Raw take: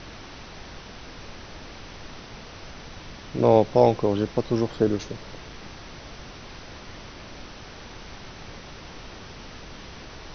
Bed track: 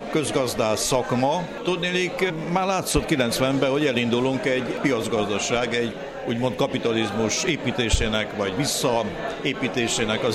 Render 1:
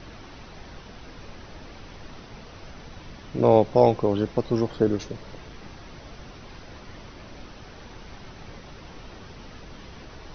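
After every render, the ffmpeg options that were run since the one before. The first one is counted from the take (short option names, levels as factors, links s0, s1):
-af "afftdn=nr=6:nf=-43"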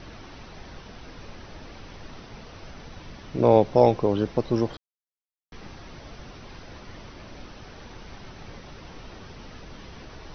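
-filter_complex "[0:a]asplit=3[s0][s1][s2];[s0]atrim=end=4.77,asetpts=PTS-STARTPTS,afade=t=out:st=4.766:d=0.004:c=hsin[s3];[s1]atrim=start=4.77:end=5.52,asetpts=PTS-STARTPTS,volume=0[s4];[s2]atrim=start=5.52,asetpts=PTS-STARTPTS,afade=t=in:d=0.004:c=hsin[s5];[s3][s4][s5]concat=n=3:v=0:a=1"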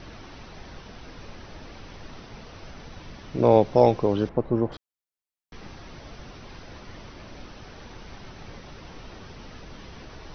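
-filter_complex "[0:a]asettb=1/sr,asplit=3[s0][s1][s2];[s0]atrim=end=4.294[s3];[s1]atrim=start=4.29:end=4.72,asetpts=PTS-STARTPTS,afade=t=in:d=0.004:c=qsin,afade=t=out:st=0.426:d=0.004:c=qsin,lowpass=1400[s4];[s2]atrim=start=4.716[s5];[s3][s4]acrossfade=d=0.004:c1=hsin:c2=qsin[s6];[s6][s5]acrossfade=d=0.004:c1=qsin:c2=hsin"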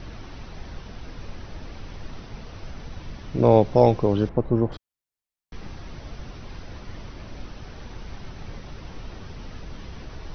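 -af "lowshelf=f=150:g=8.5"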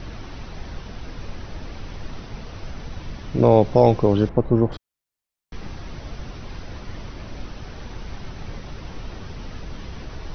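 -af "volume=1.5,alimiter=limit=0.708:level=0:latency=1"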